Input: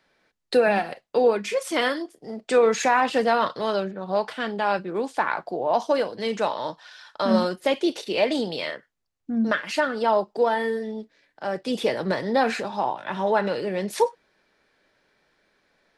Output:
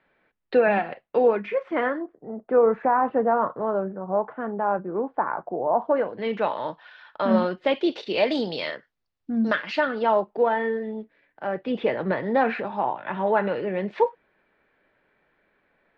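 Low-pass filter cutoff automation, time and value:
low-pass filter 24 dB per octave
0:01.21 2,800 Hz
0:02.34 1,300 Hz
0:05.74 1,300 Hz
0:06.30 3,000 Hz
0:07.39 3,000 Hz
0:08.34 5,100 Hz
0:09.47 5,100 Hz
0:10.30 2,700 Hz

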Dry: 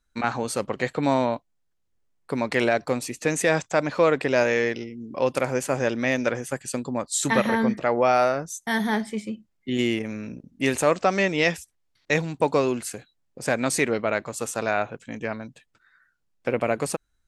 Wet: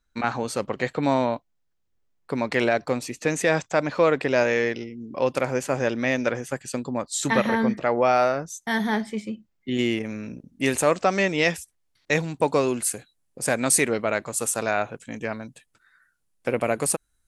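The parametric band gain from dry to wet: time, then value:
parametric band 10,000 Hz 0.71 octaves
0:09.80 −5.5 dB
0:10.36 +5 dB
0:12.47 +5 dB
0:12.88 +13 dB

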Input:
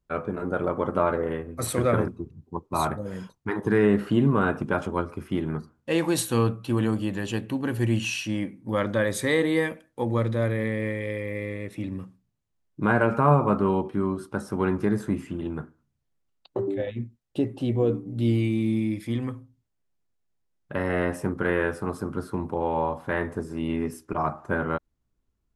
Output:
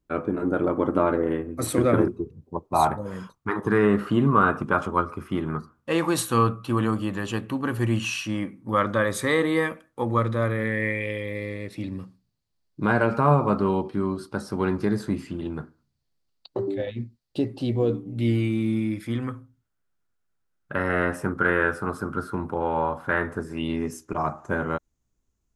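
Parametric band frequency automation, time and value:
parametric band +11.5 dB 0.47 octaves
0:01.94 300 Hz
0:03.21 1,200 Hz
0:10.50 1,200 Hz
0:11.44 4,500 Hz
0:17.87 4,500 Hz
0:18.42 1,400 Hz
0:23.41 1,400 Hz
0:23.84 6,600 Hz

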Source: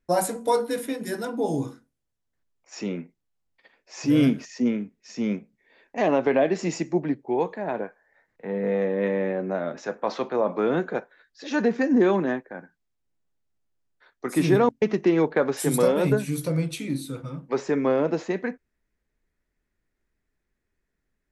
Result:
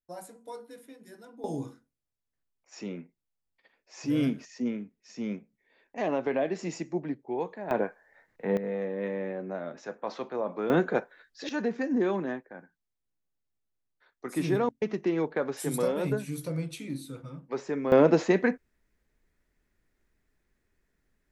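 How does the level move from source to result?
−20 dB
from 0:01.44 −7.5 dB
from 0:07.71 +2.5 dB
from 0:08.57 −8 dB
from 0:10.70 +1 dB
from 0:11.49 −7.5 dB
from 0:17.92 +4 dB

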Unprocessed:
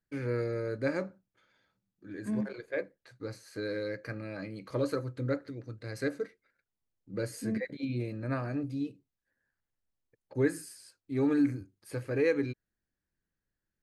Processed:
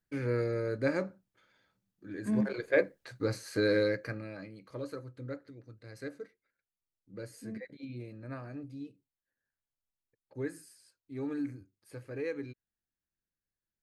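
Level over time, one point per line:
0:02.24 +1 dB
0:02.69 +8 dB
0:03.82 +8 dB
0:04.09 +1 dB
0:04.62 −9 dB

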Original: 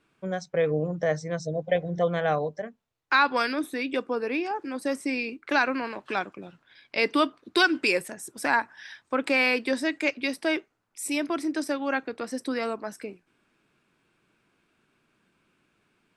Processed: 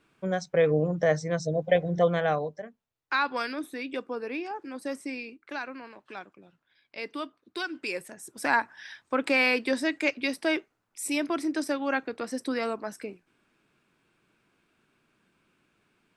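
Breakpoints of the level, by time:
0:02.06 +2 dB
0:02.64 −5.5 dB
0:04.99 −5.5 dB
0:05.58 −12.5 dB
0:07.66 −12.5 dB
0:08.52 −0.5 dB

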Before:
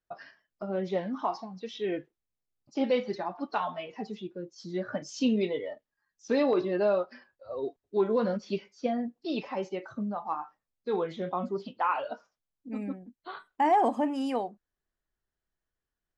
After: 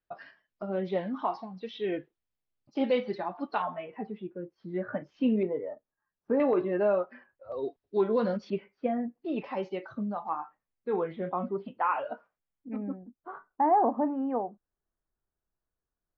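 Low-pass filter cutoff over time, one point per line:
low-pass filter 24 dB per octave
4,100 Hz
from 0:03.62 2,300 Hz
from 0:05.43 1,400 Hz
from 0:06.40 2,500 Hz
from 0:07.52 5,000 Hz
from 0:08.50 2,400 Hz
from 0:09.44 4,400 Hz
from 0:10.29 2,500 Hz
from 0:12.76 1,400 Hz

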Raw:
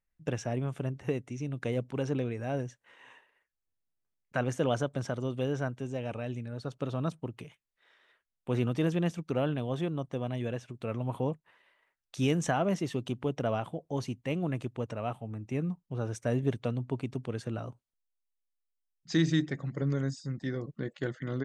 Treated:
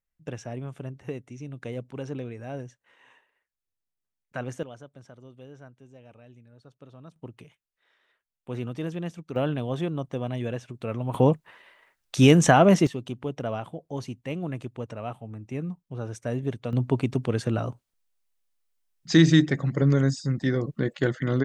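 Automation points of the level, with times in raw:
−3 dB
from 0:04.63 −15 dB
from 0:07.16 −3.5 dB
from 0:09.36 +3.5 dB
from 0:11.14 +12 dB
from 0:12.87 0 dB
from 0:16.73 +9.5 dB

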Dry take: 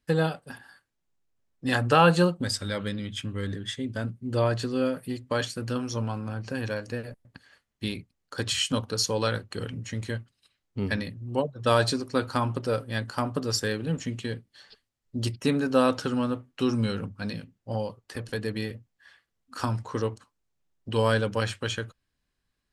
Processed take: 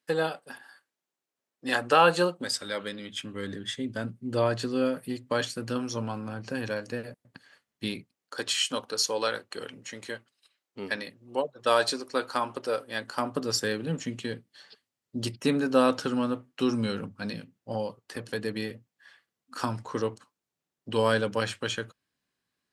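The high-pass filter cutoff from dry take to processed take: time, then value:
0:02.97 330 Hz
0:03.72 150 Hz
0:07.92 150 Hz
0:08.47 390 Hz
0:12.84 390 Hz
0:13.57 160 Hz

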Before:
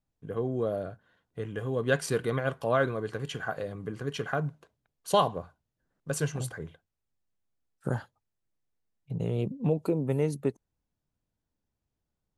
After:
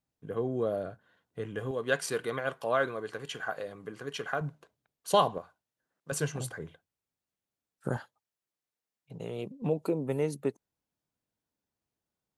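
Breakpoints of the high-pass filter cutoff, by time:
high-pass filter 6 dB per octave
140 Hz
from 0:01.71 500 Hz
from 0:04.41 160 Hz
from 0:05.38 580 Hz
from 0:06.12 150 Hz
from 0:07.97 570 Hz
from 0:09.62 260 Hz

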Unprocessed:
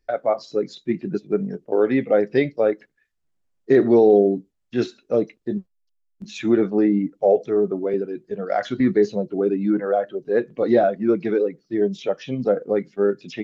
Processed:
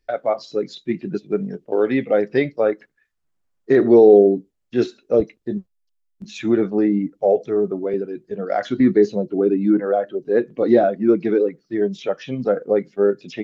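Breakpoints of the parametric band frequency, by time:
parametric band +4.5 dB 1.1 octaves
3,200 Hz
from 0:02.28 1,200 Hz
from 0:03.81 420 Hz
from 0:05.20 70 Hz
from 0:08.35 300 Hz
from 0:11.49 1,500 Hz
from 0:12.67 560 Hz

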